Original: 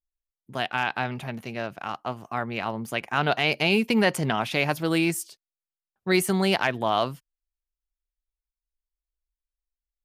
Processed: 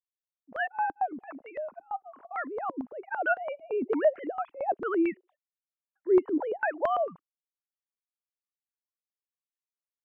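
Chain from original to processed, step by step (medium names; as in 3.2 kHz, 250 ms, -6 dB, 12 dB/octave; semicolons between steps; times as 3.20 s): formants replaced by sine waves; step-sequenced low-pass 8.9 Hz 310–1700 Hz; trim -8 dB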